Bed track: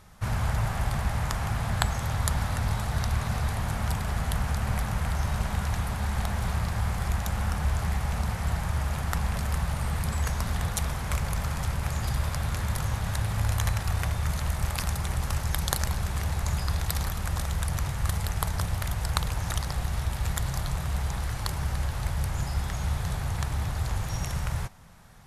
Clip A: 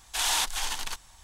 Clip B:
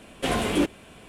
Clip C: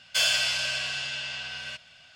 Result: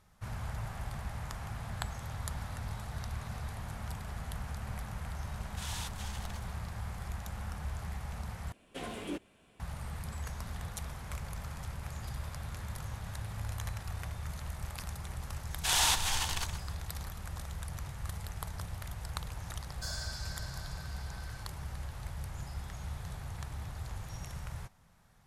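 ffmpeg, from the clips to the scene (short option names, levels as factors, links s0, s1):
-filter_complex "[1:a]asplit=2[s0][s1];[0:a]volume=0.251[s2];[s1]asplit=2[s3][s4];[s4]adelay=122.4,volume=0.355,highshelf=f=4000:g=-2.76[s5];[s3][s5]amix=inputs=2:normalize=0[s6];[3:a]asuperstop=centerf=2600:order=8:qfactor=1.2[s7];[s2]asplit=2[s8][s9];[s8]atrim=end=8.524[s10];[2:a]atrim=end=1.08,asetpts=PTS-STARTPTS,volume=0.158[s11];[s9]atrim=start=9.596[s12];[s0]atrim=end=1.23,asetpts=PTS-STARTPTS,volume=0.158,afade=t=in:d=0.004:c=hsin,afade=t=out:st=1.226:d=0.004:c=hsin,adelay=5430[s13];[s6]atrim=end=1.23,asetpts=PTS-STARTPTS,volume=0.841,afade=t=in:d=0.004:c=hsin,afade=t=out:st=1.226:d=0.004:c=hsin,adelay=15500[s14];[s7]atrim=end=2.15,asetpts=PTS-STARTPTS,volume=0.2,afade=t=in:d=0.004:c=hsin,afade=t=out:st=2.146:d=0.004:c=hsin,adelay=19670[s15];[s10][s11]acrossfade=d=0.004:c1=hsin:c2=hsin[s16];[s16][s12]acrossfade=d=0.004:c1=hsin:c2=hsin[s17];[s17][s13][s14][s15]amix=inputs=4:normalize=0"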